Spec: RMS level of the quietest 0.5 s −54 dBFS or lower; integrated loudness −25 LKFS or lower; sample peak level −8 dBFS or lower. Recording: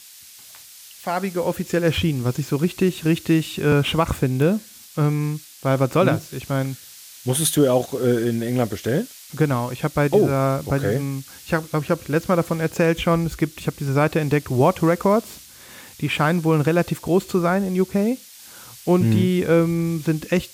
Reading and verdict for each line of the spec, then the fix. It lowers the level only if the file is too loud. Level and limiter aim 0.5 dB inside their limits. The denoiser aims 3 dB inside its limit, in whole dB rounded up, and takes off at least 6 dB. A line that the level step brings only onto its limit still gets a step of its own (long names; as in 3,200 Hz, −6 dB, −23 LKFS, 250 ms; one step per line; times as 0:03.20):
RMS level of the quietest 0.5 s −44 dBFS: out of spec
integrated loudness −21.0 LKFS: out of spec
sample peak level −6.0 dBFS: out of spec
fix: broadband denoise 9 dB, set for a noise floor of −44 dBFS
level −4.5 dB